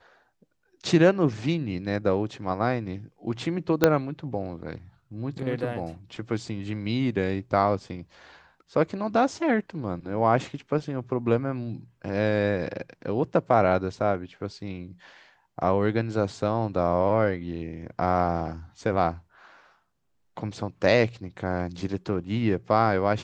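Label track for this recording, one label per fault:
3.840000	3.840000	pop -4 dBFS

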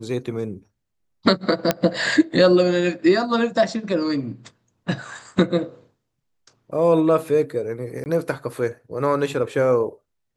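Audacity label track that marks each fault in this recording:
1.710000	1.710000	pop -3 dBFS
8.040000	8.060000	dropout 19 ms

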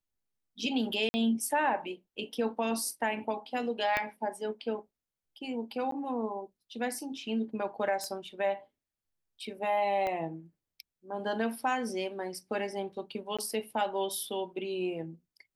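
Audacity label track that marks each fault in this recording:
1.090000	1.140000	dropout 50 ms
3.970000	3.970000	pop -15 dBFS
5.910000	5.920000	dropout 13 ms
8.040000	8.040000	pop -23 dBFS
10.070000	10.070000	pop -21 dBFS
13.370000	13.390000	dropout 16 ms

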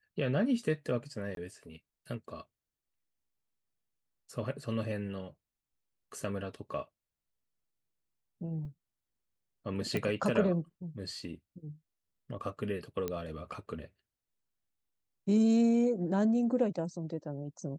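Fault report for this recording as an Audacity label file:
1.350000	1.370000	dropout 22 ms
8.650000	8.650000	dropout 2.9 ms
9.970000	9.970000	pop -20 dBFS
13.080000	13.080000	pop -20 dBFS

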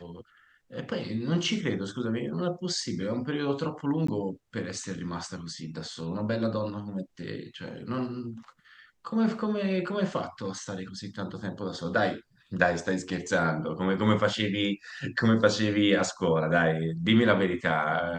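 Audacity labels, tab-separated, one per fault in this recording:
4.070000	4.080000	dropout 14 ms

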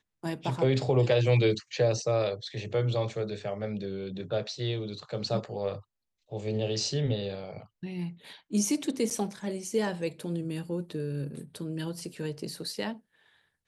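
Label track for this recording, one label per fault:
9.100000	9.110000	dropout 7.7 ms

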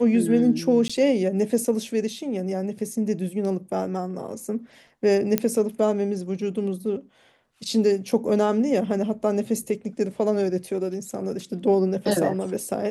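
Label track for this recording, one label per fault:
0.880000	0.900000	dropout 15 ms
5.380000	5.380000	pop -6 dBFS

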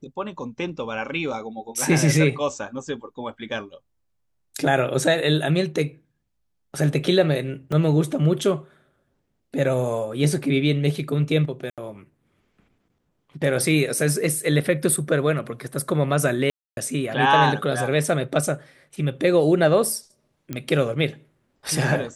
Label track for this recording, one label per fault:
7.720000	7.720000	dropout 3.3 ms
11.700000	11.780000	dropout 77 ms
16.500000	16.770000	dropout 271 ms
20.530000	20.530000	pop -15 dBFS

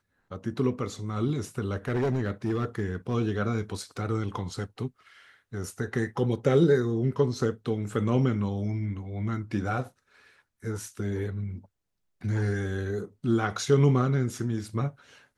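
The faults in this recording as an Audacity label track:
1.880000	3.150000	clipped -22.5 dBFS

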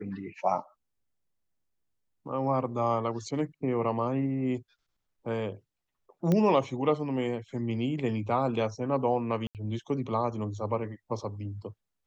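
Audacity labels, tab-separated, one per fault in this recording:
6.320000	6.320000	pop -15 dBFS
9.470000	9.550000	dropout 78 ms

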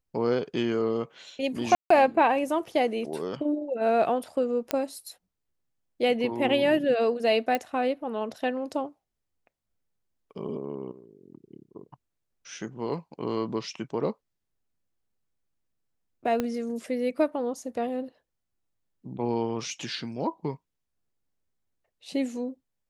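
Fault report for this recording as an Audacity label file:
1.750000	1.900000	dropout 154 ms
4.710000	4.710000	pop -11 dBFS
7.550000	7.550000	pop -13 dBFS
16.400000	16.400000	pop -14 dBFS

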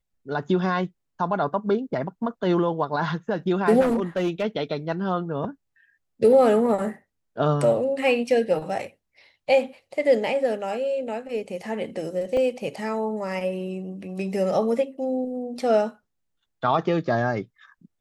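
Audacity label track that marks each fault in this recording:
3.800000	4.440000	clipped -18.5 dBFS
12.370000	12.370000	dropout 2.8 ms

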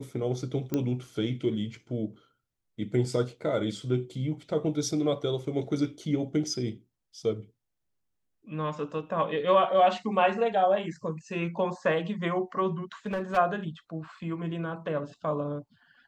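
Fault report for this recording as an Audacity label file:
0.740000	0.740000	pop -15 dBFS
13.060000	13.380000	clipped -26 dBFS

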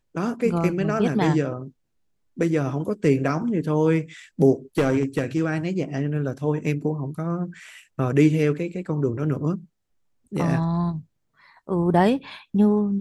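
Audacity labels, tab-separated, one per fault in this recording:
4.780000	5.450000	clipped -15 dBFS

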